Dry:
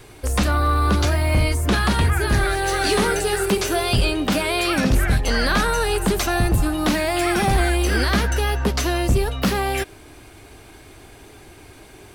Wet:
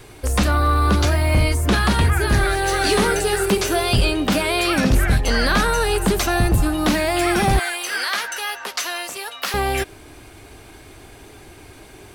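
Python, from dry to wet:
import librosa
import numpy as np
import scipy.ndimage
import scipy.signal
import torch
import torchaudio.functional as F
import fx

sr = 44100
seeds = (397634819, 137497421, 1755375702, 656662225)

y = fx.highpass(x, sr, hz=980.0, slope=12, at=(7.59, 9.54))
y = y * librosa.db_to_amplitude(1.5)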